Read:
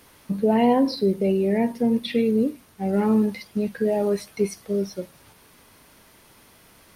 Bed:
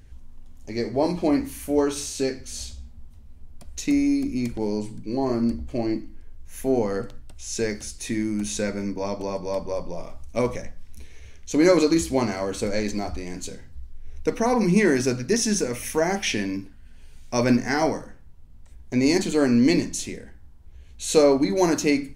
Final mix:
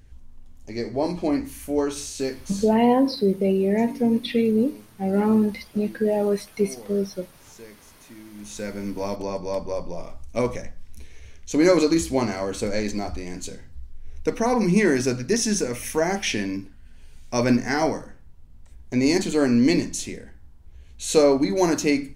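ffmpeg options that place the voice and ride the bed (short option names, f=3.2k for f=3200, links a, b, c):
-filter_complex "[0:a]adelay=2200,volume=0.5dB[a];[1:a]volume=16.5dB,afade=t=out:st=2.52:d=0.32:silence=0.149624,afade=t=in:st=8.32:d=0.67:silence=0.11885[b];[a][b]amix=inputs=2:normalize=0"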